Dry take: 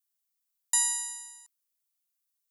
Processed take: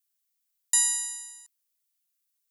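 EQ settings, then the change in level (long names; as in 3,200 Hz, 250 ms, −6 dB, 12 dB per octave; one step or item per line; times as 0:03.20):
high-pass filter 1,400 Hz 12 dB per octave
+3.0 dB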